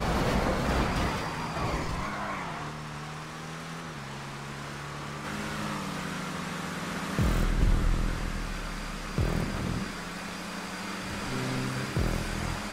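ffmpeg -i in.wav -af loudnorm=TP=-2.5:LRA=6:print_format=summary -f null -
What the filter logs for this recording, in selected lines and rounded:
Input Integrated:    -32.6 LUFS
Input True Peak:     -13.2 dBTP
Input LRA:             5.6 LU
Input Threshold:     -42.6 LUFS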